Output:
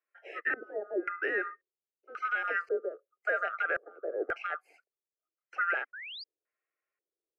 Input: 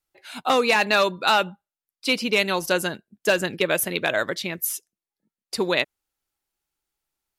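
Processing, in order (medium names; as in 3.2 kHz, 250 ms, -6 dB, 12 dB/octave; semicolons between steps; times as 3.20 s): split-band scrambler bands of 1 kHz; de-esser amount 85%; steep high-pass 240 Hz 96 dB/octave; treble shelf 2.2 kHz -10.5 dB; peak limiter -22.5 dBFS, peak gain reduction 7.5 dB; LFO low-pass square 0.93 Hz 400–2500 Hz; static phaser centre 970 Hz, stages 6; painted sound rise, 5.93–6.24 s, 1.4–5 kHz -43 dBFS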